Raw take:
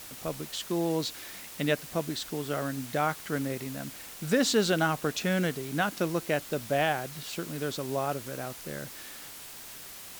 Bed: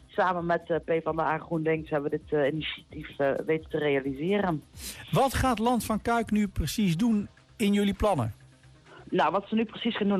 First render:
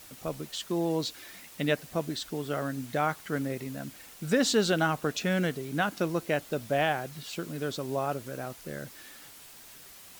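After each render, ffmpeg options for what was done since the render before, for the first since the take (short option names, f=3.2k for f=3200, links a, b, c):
-af "afftdn=nr=6:nf=-45"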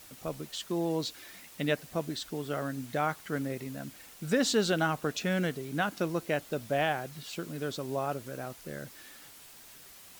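-af "volume=-2dB"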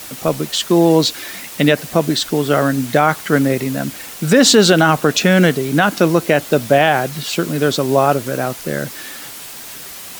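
-filter_complex "[0:a]acrossover=split=110[a][b];[b]acontrast=62[c];[a][c]amix=inputs=2:normalize=0,alimiter=level_in=13dB:limit=-1dB:release=50:level=0:latency=1"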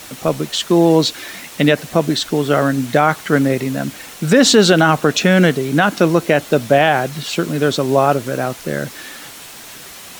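-af "highshelf=f=10k:g=-8,bandreject=f=4.8k:w=27"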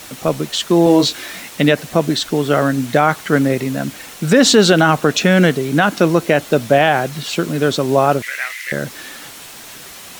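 -filter_complex "[0:a]asettb=1/sr,asplit=3[a][b][c];[a]atrim=end=0.844[d];[b]atrim=start=0.84:end=1.5,asetpts=PTS-STARTPTS,afade=t=in:d=0.004:c=qsin,afade=t=out:st=0.656:d=0.004:c=qsin,asplit=2[e][f];[f]adelay=22,volume=-5.5dB[g];[e][g]amix=inputs=2:normalize=0,atrim=end_sample=29106[h];[c]atrim=start=1.496[i];[d][h]acrossfade=d=0.004:c1=hsin:c2=qsin[j];[j][i]acrossfade=d=0.004:c1=qsin:c2=hsin,asettb=1/sr,asplit=3[k][l][m];[k]atrim=end=8.224[n];[l]atrim=start=8.22:end=8.72,asetpts=PTS-STARTPTS,afade=t=in:d=0.004:c=qsin,afade=t=out:st=0.496:d=0.004:c=qsin,highpass=f=2k:t=q:w=11[o];[m]atrim=start=8.716[p];[n][o]acrossfade=d=0.004:c1=hsin:c2=qsin[q];[q][p]acrossfade=d=0.004:c1=qsin:c2=hsin"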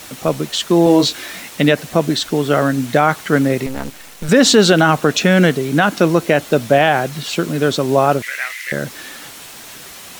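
-filter_complex "[0:a]asettb=1/sr,asplit=3[a][b][c];[a]atrim=end=3.664[d];[b]atrim=start=3.66:end=4.29,asetpts=PTS-STARTPTS,afade=t=in:d=0.004:c=qsin,afade=t=out:st=0.626:d=0.004:c=qsin,aeval=exprs='max(val(0),0)':c=same[e];[c]atrim=start=4.286[f];[d][e]acrossfade=d=0.004:c1=hsin:c2=qsin[g];[g][f]acrossfade=d=0.004:c1=qsin:c2=hsin"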